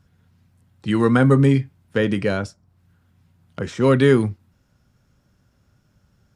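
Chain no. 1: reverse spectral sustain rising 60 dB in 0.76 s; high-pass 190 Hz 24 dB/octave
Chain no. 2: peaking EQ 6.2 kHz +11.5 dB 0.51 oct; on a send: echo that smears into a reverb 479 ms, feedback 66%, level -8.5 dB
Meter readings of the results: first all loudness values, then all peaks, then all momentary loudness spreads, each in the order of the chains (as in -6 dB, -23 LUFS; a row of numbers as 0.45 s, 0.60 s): -19.0 LUFS, -20.0 LUFS; -4.0 dBFS, -2.5 dBFS; 15 LU, 17 LU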